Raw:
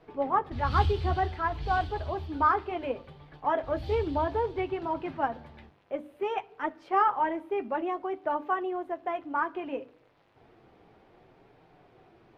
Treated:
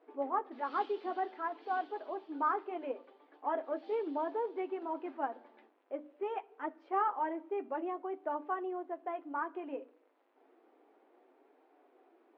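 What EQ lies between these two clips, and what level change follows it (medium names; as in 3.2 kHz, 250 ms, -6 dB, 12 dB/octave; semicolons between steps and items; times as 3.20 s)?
brick-wall FIR high-pass 240 Hz; distance through air 110 m; treble shelf 2.4 kHz -9.5 dB; -5.5 dB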